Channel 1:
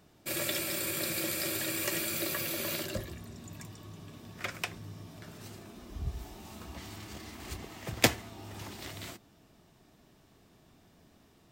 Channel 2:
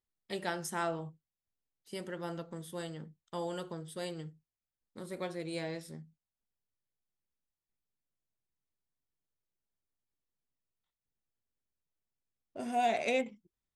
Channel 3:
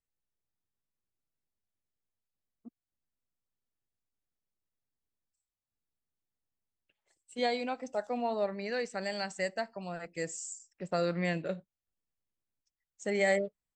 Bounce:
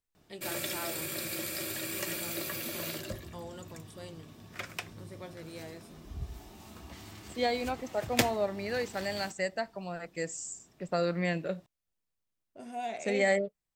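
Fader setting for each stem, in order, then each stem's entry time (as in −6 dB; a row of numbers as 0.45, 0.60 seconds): −3.0, −7.0, +1.0 decibels; 0.15, 0.00, 0.00 seconds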